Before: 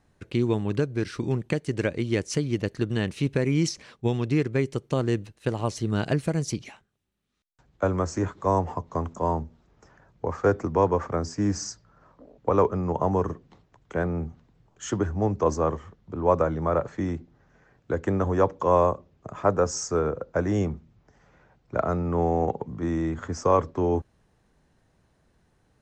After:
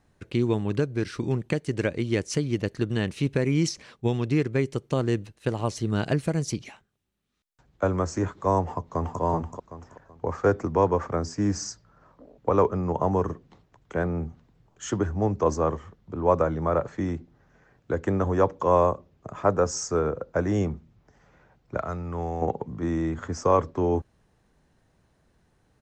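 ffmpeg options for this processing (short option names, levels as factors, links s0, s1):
-filter_complex "[0:a]asplit=2[s0][s1];[s1]afade=t=in:st=8.64:d=0.01,afade=t=out:st=9.21:d=0.01,aecho=0:1:380|760|1140|1520:0.668344|0.200503|0.060151|0.0180453[s2];[s0][s2]amix=inputs=2:normalize=0,asettb=1/sr,asplit=3[s3][s4][s5];[s3]atrim=end=21.774[s6];[s4]atrim=start=21.77:end=22.42,asetpts=PTS-STARTPTS,afade=t=in:d=0.004:c=qsin,afade=t=out:st=0.646:d=0.004:c=qsin,equalizer=f=330:w=0.35:g=-9[s7];[s5]atrim=start=22.416[s8];[s6][s7]acrossfade=d=0.004:c1=hsin:c2=qsin[s9];[s9][s8]acrossfade=d=0.004:c1=qsin:c2=hsin"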